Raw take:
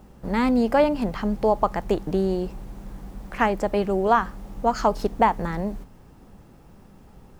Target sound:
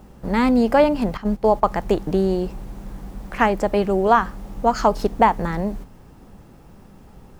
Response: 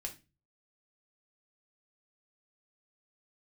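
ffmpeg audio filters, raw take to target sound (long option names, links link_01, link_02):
-filter_complex "[0:a]asettb=1/sr,asplit=3[link_01][link_02][link_03];[link_01]atrim=end=1.174[link_04];[link_02]atrim=start=1.17:end=1.64,asetpts=PTS-STARTPTS,afade=type=in:duration=0.004:curve=qsin,afade=type=out:start_time=0.466:duration=0.004:curve=qsin,agate=range=-11dB:threshold=-24dB:ratio=16:detection=peak[link_05];[link_03]atrim=start=1.636[link_06];[link_04][link_05]acrossfade=duration=0.004:curve1=hsin:curve2=qsin[link_07];[link_07][link_06]acrossfade=duration=0.004:curve1=qsin:curve2=hsin,volume=3.5dB"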